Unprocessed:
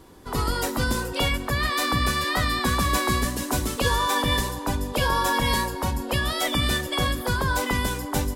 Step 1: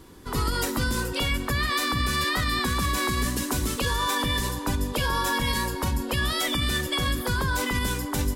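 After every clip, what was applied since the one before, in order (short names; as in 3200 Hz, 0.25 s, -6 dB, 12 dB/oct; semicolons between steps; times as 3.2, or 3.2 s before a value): bell 690 Hz -7 dB 0.96 oct; limiter -18 dBFS, peak gain reduction 8 dB; gain +2 dB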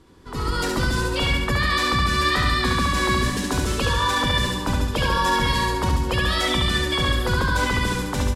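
AGC gain up to 8 dB; air absorption 54 m; feedback echo 70 ms, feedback 55%, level -4 dB; gain -4.5 dB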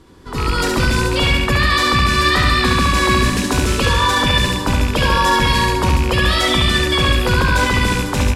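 rattling part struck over -25 dBFS, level -20 dBFS; reverb RT60 0.75 s, pre-delay 0.107 s, DRR 15.5 dB; gain +6 dB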